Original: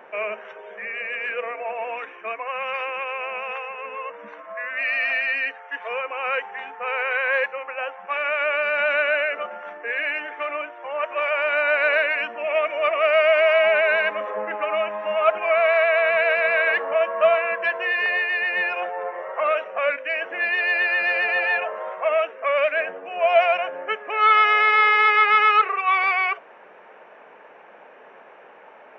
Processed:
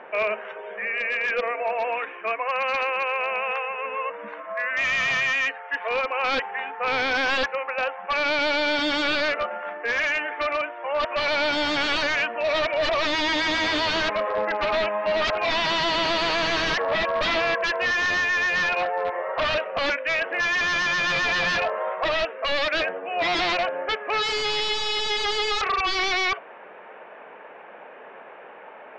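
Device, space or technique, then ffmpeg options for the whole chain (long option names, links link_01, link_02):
synthesiser wavefolder: -af "aeval=exprs='0.0841*(abs(mod(val(0)/0.0841+3,4)-2)-1)':channel_layout=same,lowpass=frequency=4500:width=0.5412,lowpass=frequency=4500:width=1.3066,volume=3.5dB"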